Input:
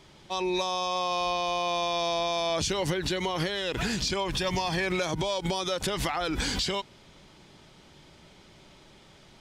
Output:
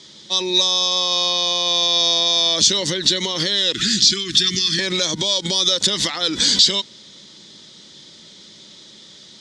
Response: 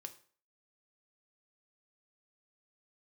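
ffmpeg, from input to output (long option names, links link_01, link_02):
-filter_complex "[0:a]asettb=1/sr,asplit=3[link_01][link_02][link_03];[link_01]atrim=end=3.734[link_04];[link_02]atrim=start=3.73:end=4.79,asetpts=PTS-STARTPTS,afade=type=in:duration=0.004:curve=qsin,afade=type=out:start_time=1.056:duration=0.004:curve=qsin,asuperstop=centerf=680:order=12:qfactor=0.87[link_05];[link_03]atrim=start=4.786[link_06];[link_04][link_05]acrossfade=duration=0.004:curve1=hsin:curve2=qsin[link_07];[link_07][link_06]acrossfade=duration=0.004:curve1=qsin:curve2=hsin,highpass=120,equalizer=frequency=210:width_type=q:width=4:gain=8,equalizer=frequency=320:width_type=q:width=4:gain=4,equalizer=frequency=510:width_type=q:width=4:gain=4,equalizer=frequency=760:width_type=q:width=4:gain=-7,equalizer=frequency=1900:width_type=q:width=4:gain=7,equalizer=frequency=3600:width_type=q:width=4:gain=7,lowpass=frequency=6900:width=0.5412,lowpass=frequency=6900:width=1.3066,aexciter=amount=7.9:drive=1.6:freq=3500,volume=1.5dB"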